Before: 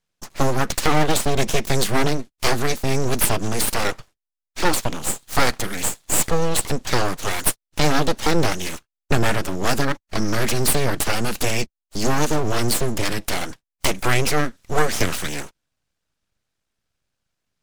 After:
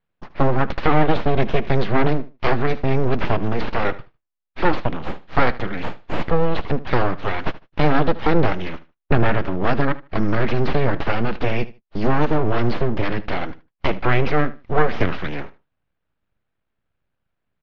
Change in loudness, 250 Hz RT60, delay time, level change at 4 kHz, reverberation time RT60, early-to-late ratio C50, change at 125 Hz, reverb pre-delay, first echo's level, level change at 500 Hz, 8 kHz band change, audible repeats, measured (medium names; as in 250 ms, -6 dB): 0.0 dB, no reverb, 76 ms, -8.5 dB, no reverb, no reverb, +2.5 dB, no reverb, -18.0 dB, +2.0 dB, under -30 dB, 2